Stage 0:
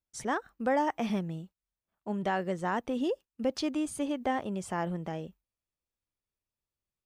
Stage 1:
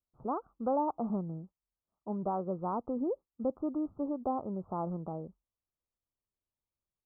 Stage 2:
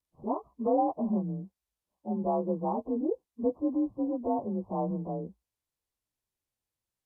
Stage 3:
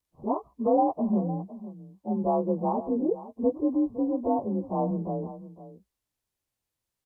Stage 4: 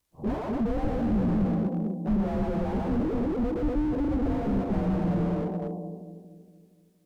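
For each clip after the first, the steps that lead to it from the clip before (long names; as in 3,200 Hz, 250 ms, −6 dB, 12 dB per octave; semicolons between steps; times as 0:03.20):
Butterworth low-pass 1,300 Hz 96 dB per octave; level −2.5 dB
partials spread apart or drawn together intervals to 90%; level +5.5 dB
single-tap delay 509 ms −15 dB; level +3.5 dB
echo with a time of its own for lows and highs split 450 Hz, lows 234 ms, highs 117 ms, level −4 dB; slew-rate limiting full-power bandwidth 7.1 Hz; level +7 dB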